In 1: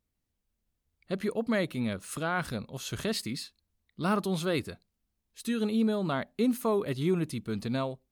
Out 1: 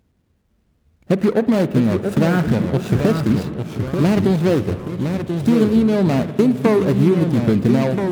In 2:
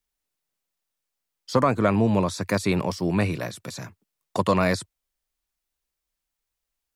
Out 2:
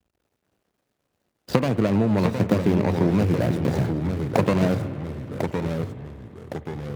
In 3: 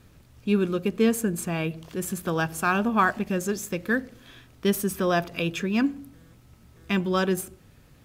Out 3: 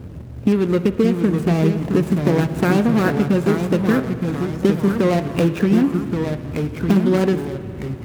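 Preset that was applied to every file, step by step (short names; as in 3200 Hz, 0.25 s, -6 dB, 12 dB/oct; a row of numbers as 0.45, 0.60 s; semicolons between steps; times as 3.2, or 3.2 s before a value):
median filter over 41 samples; compressor 10:1, threshold -35 dBFS; echoes that change speed 0.514 s, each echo -2 st, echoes 3, each echo -6 dB; HPF 59 Hz; spring tank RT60 3.6 s, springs 51 ms, chirp 45 ms, DRR 13 dB; normalise peaks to -3 dBFS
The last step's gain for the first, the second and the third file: +22.5, +17.5, +21.0 dB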